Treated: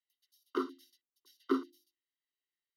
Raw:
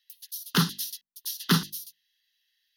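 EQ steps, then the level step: running mean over 52 samples; rippled Chebyshev high-pass 260 Hz, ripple 9 dB; +8.5 dB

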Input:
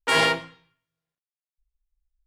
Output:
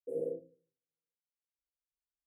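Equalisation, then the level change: vowel filter e; inverse Chebyshev band-stop 1100–5000 Hz, stop band 60 dB; +6.0 dB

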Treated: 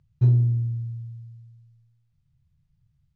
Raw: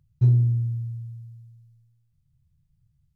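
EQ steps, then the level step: air absorption 100 m; low shelf 280 Hz -5.5 dB; +4.5 dB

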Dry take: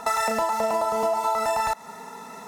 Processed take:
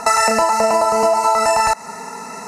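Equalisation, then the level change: Butterworth band-stop 3400 Hz, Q 3.4; Bessel low-pass 7600 Hz, order 4; high shelf 5000 Hz +11 dB; +8.5 dB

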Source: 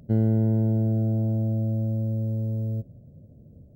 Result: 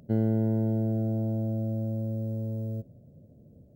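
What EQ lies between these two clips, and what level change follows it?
low shelf 130 Hz -10 dB; 0.0 dB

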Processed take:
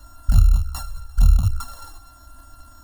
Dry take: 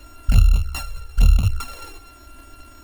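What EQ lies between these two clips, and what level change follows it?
fixed phaser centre 1000 Hz, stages 4; 0.0 dB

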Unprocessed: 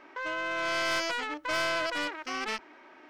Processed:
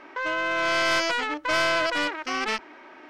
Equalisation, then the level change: high shelf 11000 Hz -8.5 dB; +6.5 dB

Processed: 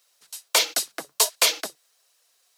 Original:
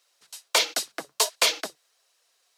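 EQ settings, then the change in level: high shelf 9200 Hz +10.5 dB; 0.0 dB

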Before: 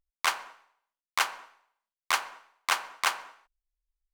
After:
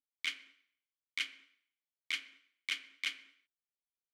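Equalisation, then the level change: vowel filter i; high shelf 2300 Hz +11 dB; high shelf 5000 Hz +4.5 dB; -2.0 dB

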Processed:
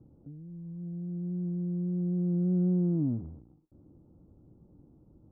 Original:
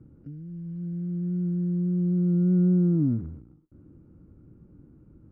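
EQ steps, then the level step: LPF 1100 Hz 24 dB/oct; air absorption 490 m; bell 750 Hz +11.5 dB 1.2 oct; -6.0 dB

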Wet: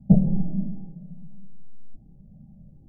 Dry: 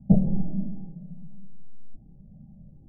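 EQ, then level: dynamic EQ 160 Hz, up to +4 dB, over -36 dBFS; 0.0 dB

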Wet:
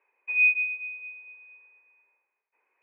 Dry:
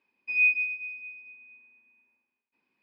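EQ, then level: elliptic band-pass 440–2200 Hz, stop band 50 dB; +7.5 dB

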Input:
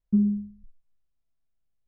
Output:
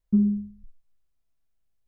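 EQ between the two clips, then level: bell 180 Hz -2.5 dB; +3.0 dB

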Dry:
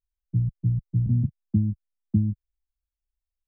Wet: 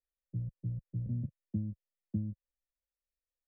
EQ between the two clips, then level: vocal tract filter e; +6.5 dB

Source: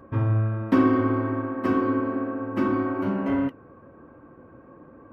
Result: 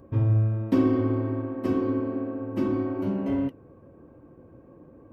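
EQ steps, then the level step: bell 240 Hz -3.5 dB 0.58 oct; bell 1400 Hz -14 dB 1.7 oct; +1.5 dB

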